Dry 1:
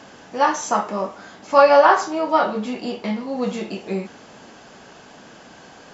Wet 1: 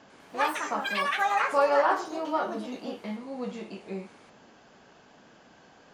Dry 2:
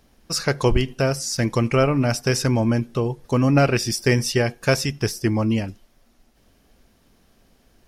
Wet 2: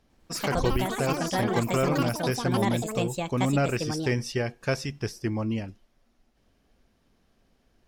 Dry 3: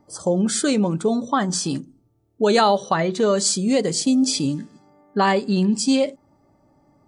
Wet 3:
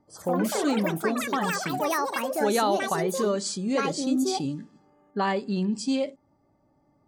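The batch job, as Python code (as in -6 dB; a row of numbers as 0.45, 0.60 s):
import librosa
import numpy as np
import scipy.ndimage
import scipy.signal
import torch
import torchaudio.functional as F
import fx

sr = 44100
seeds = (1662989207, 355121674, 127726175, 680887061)

y = fx.high_shelf(x, sr, hz=8000.0, db=-10.5)
y = fx.echo_pitch(y, sr, ms=100, semitones=6, count=3, db_per_echo=-3.0)
y = librosa.util.normalize(y) * 10.0 ** (-12 / 20.0)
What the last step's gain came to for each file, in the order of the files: -11.0, -8.0, -7.5 dB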